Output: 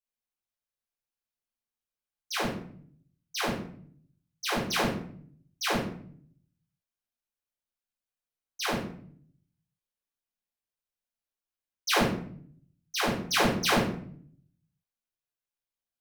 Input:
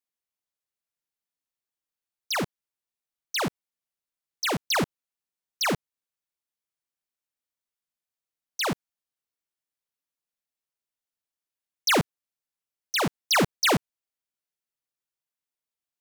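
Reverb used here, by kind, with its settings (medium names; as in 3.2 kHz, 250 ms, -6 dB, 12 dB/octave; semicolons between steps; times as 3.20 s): simulated room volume 78 m³, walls mixed, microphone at 3.8 m; trim -16.5 dB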